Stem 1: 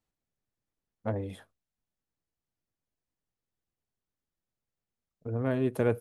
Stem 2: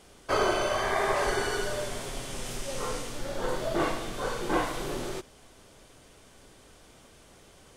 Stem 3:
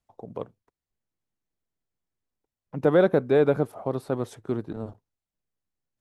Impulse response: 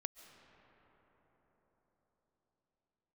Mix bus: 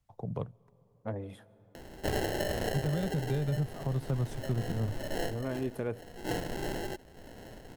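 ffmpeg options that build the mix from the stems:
-filter_complex "[0:a]volume=-7.5dB,asplit=3[a][b][c];[b]volume=-5dB[d];[1:a]acrusher=samples=37:mix=1:aa=0.000001,acompressor=mode=upward:threshold=-36dB:ratio=2.5,adelay=1750,volume=-2dB[e];[2:a]lowshelf=f=200:t=q:w=1.5:g=9,acrossover=split=240|3000[f][g][h];[g]acompressor=threshold=-30dB:ratio=6[i];[f][i][h]amix=inputs=3:normalize=0,volume=-1.5dB,asplit=2[j][k];[k]volume=-14dB[l];[c]apad=whole_len=419644[m];[e][m]sidechaincompress=threshold=-47dB:ratio=6:attack=36:release=491[n];[3:a]atrim=start_sample=2205[o];[d][l]amix=inputs=2:normalize=0[p];[p][o]afir=irnorm=-1:irlink=0[q];[a][n][j][q]amix=inputs=4:normalize=0,alimiter=limit=-22.5dB:level=0:latency=1:release=448"

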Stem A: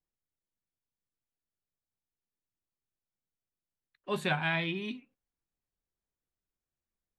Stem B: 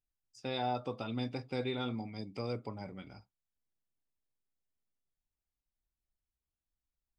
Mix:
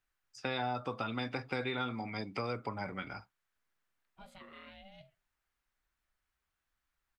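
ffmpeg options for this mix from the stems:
-filter_complex "[0:a]alimiter=level_in=1.5dB:limit=-24dB:level=0:latency=1:release=58,volume=-1.5dB,aeval=exprs='val(0)*sin(2*PI*390*n/s)':c=same,adelay=100,volume=-15.5dB[a];[1:a]equalizer=f=1.5k:w=0.69:g=15,volume=2.5dB[b];[a][b]amix=inputs=2:normalize=0,acrossover=split=300|5800[c][d][e];[c]acompressor=threshold=-40dB:ratio=4[f];[d]acompressor=threshold=-36dB:ratio=4[g];[e]acompressor=threshold=-58dB:ratio=4[h];[f][g][h]amix=inputs=3:normalize=0"

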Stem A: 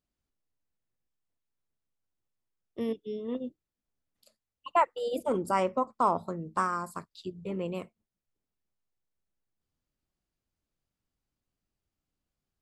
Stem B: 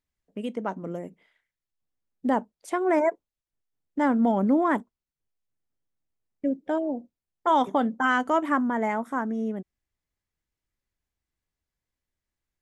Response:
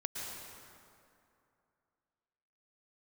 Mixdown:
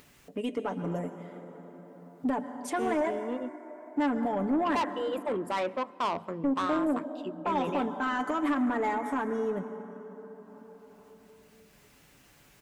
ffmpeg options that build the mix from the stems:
-filter_complex "[0:a]highpass=190,highshelf=f=3.4k:t=q:w=3:g=-7.5,asoftclip=type=tanh:threshold=-24.5dB,volume=1dB,asplit=2[a][b];[b]volume=-22.5dB[c];[1:a]alimiter=limit=-22dB:level=0:latency=1:release=65,aecho=1:1:6.9:0.63,volume=-1dB,asplit=2[d][e];[e]volume=-6.5dB[f];[2:a]atrim=start_sample=2205[g];[c][f]amix=inputs=2:normalize=0[h];[h][g]afir=irnorm=-1:irlink=0[i];[a][d][i]amix=inputs=3:normalize=0,highpass=59,acompressor=mode=upward:threshold=-38dB:ratio=2.5,asoftclip=type=tanh:threshold=-21dB"

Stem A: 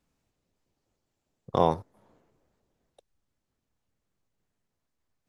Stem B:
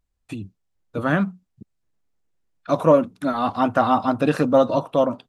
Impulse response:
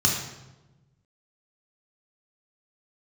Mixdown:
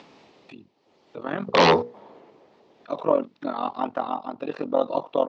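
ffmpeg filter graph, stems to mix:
-filter_complex "[0:a]bandreject=f=60:t=h:w=6,bandreject=f=120:t=h:w=6,bandreject=f=180:t=h:w=6,bandreject=f=240:t=h:w=6,bandreject=f=300:t=h:w=6,bandreject=f=360:t=h:w=6,bandreject=f=420:t=h:w=6,bandreject=f=480:t=h:w=6,aeval=exprs='0.447*sin(PI/2*7.08*val(0)/0.447)':c=same,volume=-3dB[a];[1:a]tremolo=f=44:d=0.889,adelay=200,volume=-1dB[b];[a][b]amix=inputs=2:normalize=0,acompressor=mode=upward:threshold=-36dB:ratio=2.5,tremolo=f=0.58:d=0.57,highpass=260,equalizer=f=400:t=q:w=4:g=4,equalizer=f=870:t=q:w=4:g=3,equalizer=f=1.5k:t=q:w=4:g=-6,lowpass=f=4.6k:w=0.5412,lowpass=f=4.6k:w=1.3066"

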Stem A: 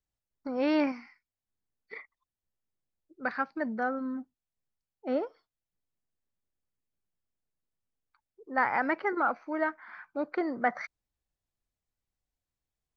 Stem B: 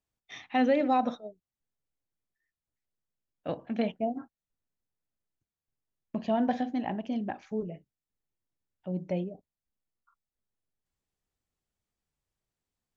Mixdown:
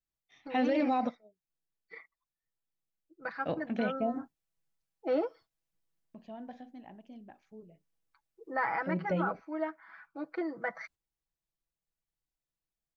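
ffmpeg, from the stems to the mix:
-filter_complex "[0:a]aecho=1:1:6.1:0.87,volume=-0.5dB,afade=t=in:st=3.78:d=0.49:silence=0.421697,afade=t=out:st=8.61:d=0.22:silence=0.421697,asplit=2[a][b];[1:a]volume=0dB[c];[b]apad=whole_len=571789[d];[c][d]sidechaingate=range=-18dB:threshold=-56dB:ratio=16:detection=peak[e];[a][e]amix=inputs=2:normalize=0,alimiter=limit=-21dB:level=0:latency=1:release=34"

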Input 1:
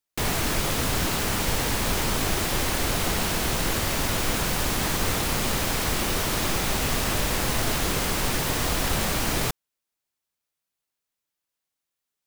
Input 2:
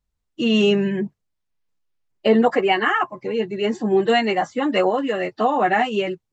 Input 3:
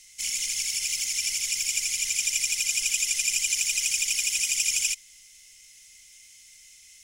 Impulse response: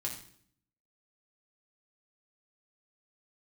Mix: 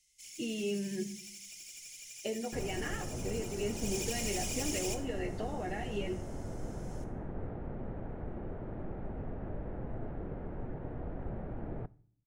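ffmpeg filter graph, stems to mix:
-filter_complex "[0:a]lowpass=f=1.2k:w=0.5412,lowpass=f=1.2k:w=1.3066,adelay=2350,volume=-12.5dB,asplit=2[a][b];[b]volume=-17.5dB[c];[1:a]acompressor=threshold=-23dB:ratio=6,volume=-14dB,asplit=2[d][e];[e]volume=-3.5dB[f];[2:a]asoftclip=type=hard:threshold=-25.5dB,volume=-14dB,afade=t=in:st=3.72:d=0.26:silence=0.334965,asplit=2[g][h];[h]volume=-3dB[i];[3:a]atrim=start_sample=2205[j];[c][f][i]amix=inputs=3:normalize=0[k];[k][j]afir=irnorm=-1:irlink=0[l];[a][d][g][l]amix=inputs=4:normalize=0,equalizer=f=1.1k:t=o:w=0.72:g=-14"

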